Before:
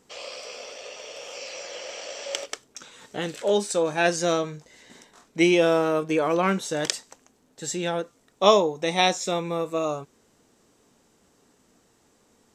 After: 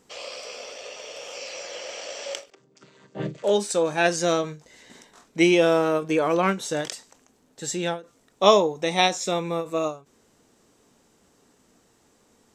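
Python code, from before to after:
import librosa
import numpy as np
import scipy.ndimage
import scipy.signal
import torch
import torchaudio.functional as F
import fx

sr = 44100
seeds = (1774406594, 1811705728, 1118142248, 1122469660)

y = fx.chord_vocoder(x, sr, chord='minor triad', root=48, at=(2.5, 3.44))
y = fx.end_taper(y, sr, db_per_s=190.0)
y = y * 10.0 ** (1.0 / 20.0)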